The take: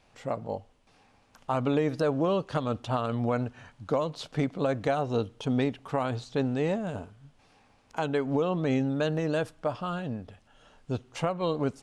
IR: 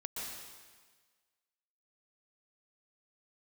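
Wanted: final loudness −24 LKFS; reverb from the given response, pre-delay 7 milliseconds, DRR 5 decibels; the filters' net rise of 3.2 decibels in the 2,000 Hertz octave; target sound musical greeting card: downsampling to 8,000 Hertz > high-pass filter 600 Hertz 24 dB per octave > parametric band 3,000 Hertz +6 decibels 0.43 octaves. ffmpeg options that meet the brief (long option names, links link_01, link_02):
-filter_complex "[0:a]equalizer=frequency=2000:width_type=o:gain=3,asplit=2[link_01][link_02];[1:a]atrim=start_sample=2205,adelay=7[link_03];[link_02][link_03]afir=irnorm=-1:irlink=0,volume=-6dB[link_04];[link_01][link_04]amix=inputs=2:normalize=0,aresample=8000,aresample=44100,highpass=frequency=600:width=0.5412,highpass=frequency=600:width=1.3066,equalizer=frequency=3000:width_type=o:width=0.43:gain=6,volume=9.5dB"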